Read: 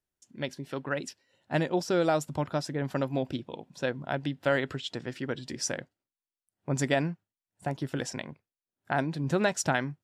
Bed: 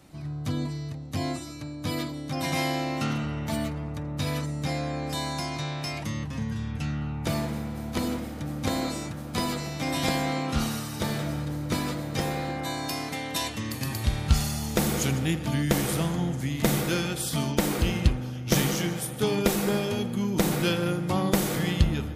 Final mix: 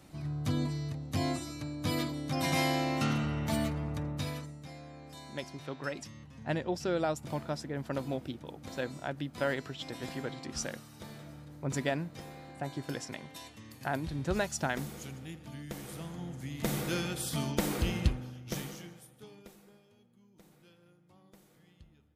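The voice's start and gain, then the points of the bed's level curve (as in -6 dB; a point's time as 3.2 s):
4.95 s, -5.5 dB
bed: 4.05 s -2 dB
4.66 s -18 dB
15.77 s -18 dB
16.98 s -6 dB
18.05 s -6 dB
19.83 s -36 dB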